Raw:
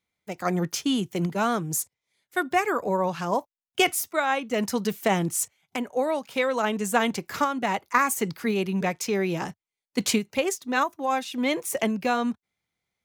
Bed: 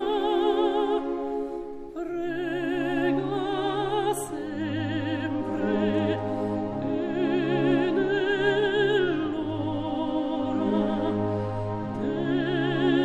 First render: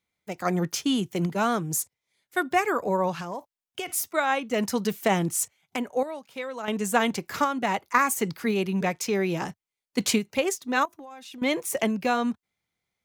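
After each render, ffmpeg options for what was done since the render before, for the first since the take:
-filter_complex "[0:a]asplit=3[a][b][c];[a]afade=t=out:st=3.16:d=0.02[d];[b]acompressor=threshold=-30dB:ratio=5:attack=3.2:release=140:knee=1:detection=peak,afade=t=in:st=3.16:d=0.02,afade=t=out:st=3.89:d=0.02[e];[c]afade=t=in:st=3.89:d=0.02[f];[d][e][f]amix=inputs=3:normalize=0,asettb=1/sr,asplit=3[g][h][i];[g]atrim=end=10.854[j];[h]atrim=start=10.85:end=11.42,asetpts=PTS-STARTPTS,afade=t=in:d=0.004:c=qsin,afade=t=out:st=0.566:d=0.004:c=qsin,acompressor=threshold=-39dB:ratio=16:attack=3.2:release=140:knee=1:detection=peak[k];[i]atrim=start=11.416[l];[j][k]acrossfade=d=0.004:c1=hsin:c2=qsin[m];[m][l]acrossfade=d=0.004:c1=qsin:c2=hsin,asplit=3[n][o][p];[n]atrim=end=6.032[q];[o]atrim=start=6.028:end=6.682,asetpts=PTS-STARTPTS,volume=-9.5dB[r];[p]atrim=start=6.678[s];[q][r]acrossfade=d=0.004:c1=hsin:c2=hsin[t];[t][s]acrossfade=d=0.004:c1=hsin:c2=hsin"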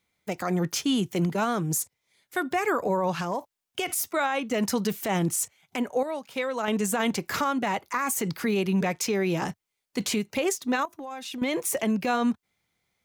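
-filter_complex "[0:a]asplit=2[a][b];[b]acompressor=threshold=-33dB:ratio=6,volume=1dB[c];[a][c]amix=inputs=2:normalize=0,alimiter=limit=-17.5dB:level=0:latency=1:release=31"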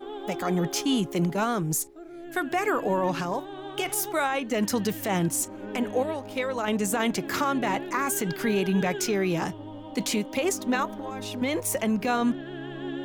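-filter_complex "[1:a]volume=-11.5dB[a];[0:a][a]amix=inputs=2:normalize=0"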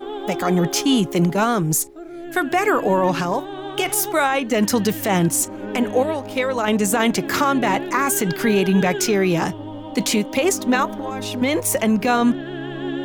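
-af "volume=7.5dB"

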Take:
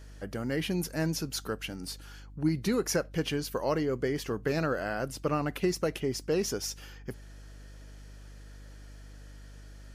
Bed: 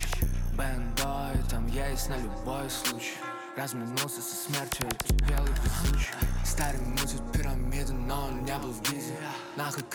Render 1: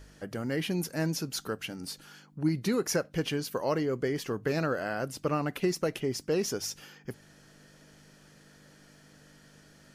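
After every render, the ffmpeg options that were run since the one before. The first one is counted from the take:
-af "bandreject=f=50:t=h:w=4,bandreject=f=100:t=h:w=4"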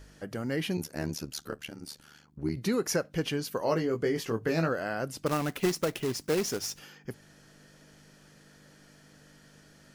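-filter_complex "[0:a]asettb=1/sr,asplit=3[a][b][c];[a]atrim=end=0.774[d];[b]atrim=start=0.77:end=2.57,asetpts=PTS-STARTPTS,afade=t=in:d=0.004:c=qsin,afade=t=out:st=1.796:d=0.004:c=qsin,tremolo=f=74:d=0.947[e];[c]atrim=start=2.566[f];[d][e]acrossfade=d=0.004:c1=hsin:c2=qsin[g];[g][f]acrossfade=d=0.004:c1=qsin:c2=hsin,asettb=1/sr,asplit=3[h][i][j];[h]atrim=end=3.604[k];[i]atrim=start=3.6:end=4.69,asetpts=PTS-STARTPTS,afade=t=in:d=0.004:c=qsin,afade=t=out:st=1.086:d=0.004:c=qsin,asplit=2[l][m];[m]adelay=18,volume=-5dB[n];[l][n]amix=inputs=2:normalize=0,atrim=end_sample=48069[o];[j]atrim=start=4.686[p];[k][o]acrossfade=d=0.004:c1=hsin:c2=qsin[q];[q][p]acrossfade=d=0.004:c1=qsin:c2=hsin,asettb=1/sr,asplit=3[r][s][t];[r]atrim=end=5.264[u];[s]atrim=start=5.26:end=6.79,asetpts=PTS-STARTPTS,afade=t=in:d=0.004:c=qsin,afade=t=out:st=1.526:d=0.004:c=qsin,acrusher=bits=2:mode=log:mix=0:aa=0.000001[v];[t]atrim=start=6.786[w];[u][v]acrossfade=d=0.004:c1=hsin:c2=qsin[x];[x][w]acrossfade=d=0.004:c1=qsin:c2=hsin"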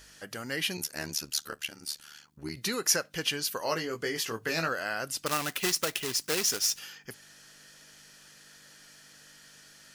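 -af "tiltshelf=f=970:g=-9,bandreject=f=2.2k:w=25"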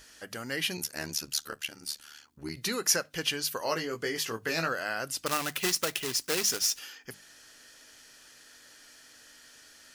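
-af "bandreject=f=50:t=h:w=6,bandreject=f=100:t=h:w=6,bandreject=f=150:t=h:w=6,bandreject=f=200:t=h:w=6"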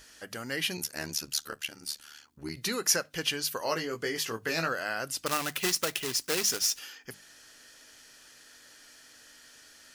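-af anull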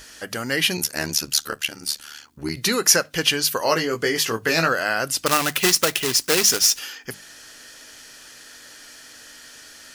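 -af "volume=10.5dB,alimiter=limit=-1dB:level=0:latency=1"

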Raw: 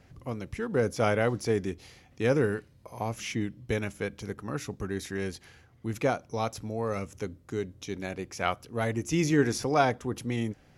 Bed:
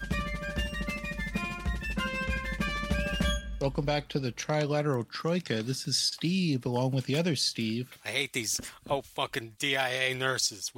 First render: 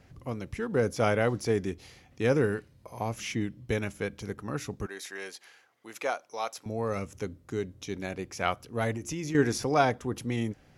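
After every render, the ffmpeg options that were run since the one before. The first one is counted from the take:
-filter_complex "[0:a]asettb=1/sr,asplit=3[a][b][c];[a]atrim=end=4.864[d];[b]atrim=start=4.86:end=6.66,asetpts=PTS-STARTPTS,afade=t=in:d=0.004:c=qsin,afade=t=out:st=1.796:d=0.004:c=qsin,highpass=620[e];[c]atrim=start=6.656[f];[d][e]acrossfade=d=0.004:c1=hsin:c2=qsin[g];[g][f]acrossfade=d=0.004:c1=qsin:c2=hsin,asettb=1/sr,asplit=3[h][i][j];[h]atrim=end=8.924[k];[i]atrim=start=8.92:end=9.35,asetpts=PTS-STARTPTS,afade=t=in:d=0.004:c=qsin,afade=t=out:st=0.426:d=0.004:c=qsin,acompressor=threshold=-31dB:ratio=6:attack=3.2:release=140:knee=1:detection=peak[l];[j]atrim=start=9.346[m];[k][l]acrossfade=d=0.004:c1=hsin:c2=qsin[n];[n][m]acrossfade=d=0.004:c1=qsin:c2=hsin"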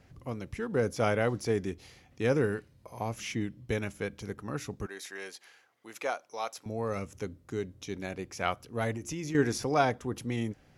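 -af "volume=-2dB"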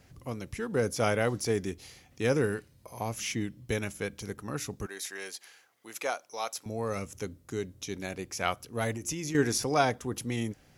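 -af "highshelf=f=4.8k:g=10.5"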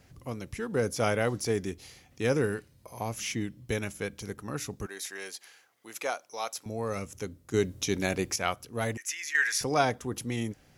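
-filter_complex "[0:a]asettb=1/sr,asplit=3[a][b][c];[a]atrim=end=8.974[d];[b]atrim=start=8.97:end=9.61,asetpts=PTS-STARTPTS,afade=t=in:d=0.004:c=qsin,afade=t=out:st=0.636:d=0.004:c=qsin,highpass=f=1.8k:t=q:w=4.8[e];[c]atrim=start=9.606[f];[d][e]acrossfade=d=0.004:c1=hsin:c2=qsin[g];[g][f]acrossfade=d=0.004:c1=qsin:c2=hsin,asplit=3[h][i][j];[h]atrim=end=7.542[k];[i]atrim=start=7.538:end=8.362,asetpts=PTS-STARTPTS,volume=8dB[l];[j]atrim=start=8.358[m];[k][l]acrossfade=d=0.004:c1=hsin:c2=hsin[n];[n][m]acrossfade=d=0.004:c1=hsin:c2=hsin"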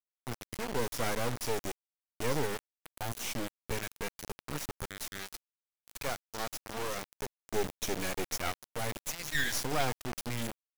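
-af "acrusher=bits=3:dc=4:mix=0:aa=0.000001,asoftclip=type=hard:threshold=-20.5dB"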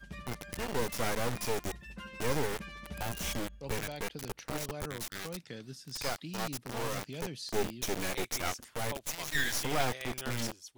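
-filter_complex "[1:a]volume=-14dB[a];[0:a][a]amix=inputs=2:normalize=0"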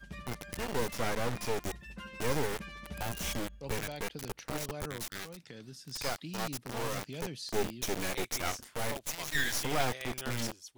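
-filter_complex "[0:a]asettb=1/sr,asplit=3[a][b][c];[a]atrim=end=0.924[d];[b]atrim=start=0.92:end=1.61,asetpts=PTS-STARTPTS,afade=t=in:d=0.004:c=qsin,afade=t=out:st=0.686:d=0.004:c=qsin,highshelf=f=6.4k:g=-6[e];[c]atrim=start=1.606[f];[d][e]acrossfade=d=0.004:c1=hsin:c2=qsin[g];[g][f]acrossfade=d=0.004:c1=qsin:c2=hsin,asettb=1/sr,asplit=3[h][i][j];[h]atrim=end=5.244[k];[i]atrim=start=5.24:end=5.84,asetpts=PTS-STARTPTS,afade=t=in:d=0.004:c=qsin,afade=t=out:st=0.596:d=0.004:c=qsin,acompressor=threshold=-42dB:ratio=6:attack=3.2:release=140:knee=1:detection=peak[l];[j]atrim=start=5.836[m];[k][l]acrossfade=d=0.004:c1=hsin:c2=qsin[n];[n][m]acrossfade=d=0.004:c1=qsin:c2=hsin,asettb=1/sr,asplit=3[o][p][q];[o]atrim=end=8.504[r];[p]atrim=start=8.5:end=8.97,asetpts=PTS-STARTPTS,afade=t=in:d=0.004:c=qsin,afade=t=out:st=0.466:d=0.004:c=qsin,asplit=2[s][t];[t]adelay=30,volume=-8dB[u];[s][u]amix=inputs=2:normalize=0,atrim=end_sample=20727[v];[q]atrim=start=8.966[w];[r][v]acrossfade=d=0.004:c1=hsin:c2=qsin[x];[x][w]acrossfade=d=0.004:c1=qsin:c2=hsin"

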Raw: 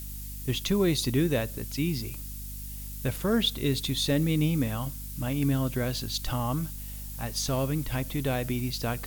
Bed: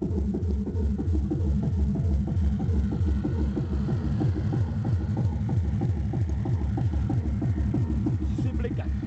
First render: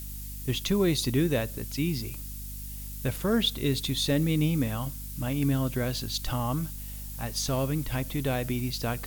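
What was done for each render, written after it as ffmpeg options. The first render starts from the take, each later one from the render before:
-af anull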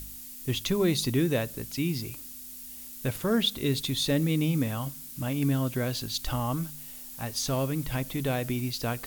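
-af "bandreject=f=50:t=h:w=4,bandreject=f=100:t=h:w=4,bandreject=f=150:t=h:w=4,bandreject=f=200:t=h:w=4"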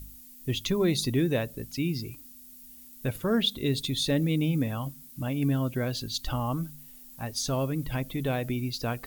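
-af "afftdn=nr=10:nf=-43"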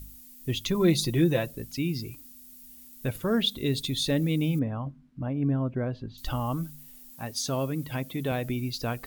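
-filter_complex "[0:a]asettb=1/sr,asplit=3[a][b][c];[a]atrim=end=0.744[d];[b]atrim=start=0.74:end=1.51,asetpts=PTS-STARTPTS,afade=t=in:d=0.004:c=qsin,afade=t=out:st=0.766:d=0.004:c=qsin,aecho=1:1:5.9:0.65,atrim=end_sample=33957[e];[c]atrim=start=1.506[f];[d][e]acrossfade=d=0.004:c1=hsin:c2=qsin[g];[g][f]acrossfade=d=0.004:c1=qsin:c2=hsin,asettb=1/sr,asplit=3[h][i][j];[h]atrim=end=4.594[k];[i]atrim=start=4.59:end=6.18,asetpts=PTS-STARTPTS,afade=t=in:d=0.004:c=qsin,afade=t=out:st=1.586:d=0.004:c=qsin,lowpass=1.3k[l];[j]atrim=start=6.176[m];[k][l]acrossfade=d=0.004:c1=hsin:c2=qsin[n];[n][m]acrossfade=d=0.004:c1=qsin:c2=hsin,asettb=1/sr,asplit=3[o][p][q];[o]atrim=end=7.114[r];[p]atrim=start=7.11:end=8.32,asetpts=PTS-STARTPTS,afade=t=in:d=0.004:c=qsin,afade=t=out:st=1.206:d=0.004:c=qsin,highpass=110[s];[q]atrim=start=8.316[t];[r][s]acrossfade=d=0.004:c1=hsin:c2=qsin[u];[u][t]acrossfade=d=0.004:c1=qsin:c2=hsin"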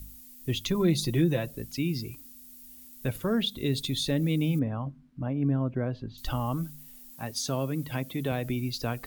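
-filter_complex "[0:a]acrossover=split=260[a][b];[b]acompressor=threshold=-28dB:ratio=2.5[c];[a][c]amix=inputs=2:normalize=0"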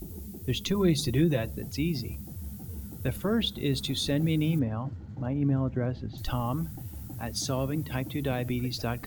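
-filter_complex "[1:a]volume=-15dB[a];[0:a][a]amix=inputs=2:normalize=0"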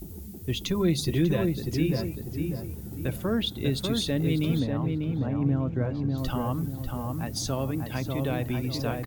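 -filter_complex "[0:a]asplit=2[a][b];[b]adelay=594,lowpass=f=1.4k:p=1,volume=-3dB,asplit=2[c][d];[d]adelay=594,lowpass=f=1.4k:p=1,volume=0.41,asplit=2[e][f];[f]adelay=594,lowpass=f=1.4k:p=1,volume=0.41,asplit=2[g][h];[h]adelay=594,lowpass=f=1.4k:p=1,volume=0.41,asplit=2[i][j];[j]adelay=594,lowpass=f=1.4k:p=1,volume=0.41[k];[a][c][e][g][i][k]amix=inputs=6:normalize=0"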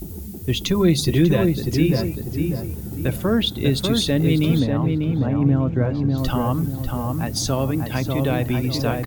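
-af "volume=7.5dB"

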